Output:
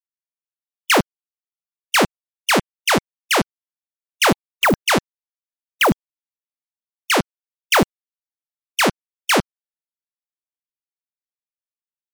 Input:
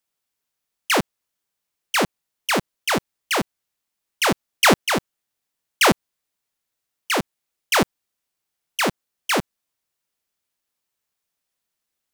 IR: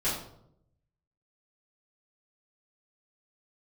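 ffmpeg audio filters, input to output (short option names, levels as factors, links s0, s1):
-af "aeval=exprs='0.211*(abs(mod(val(0)/0.211+3,4)-2)-1)':c=same,afftfilt=real='re*gte(hypot(re,im),0.00891)':imag='im*gte(hypot(re,im),0.00891)':win_size=1024:overlap=0.75,volume=1.68"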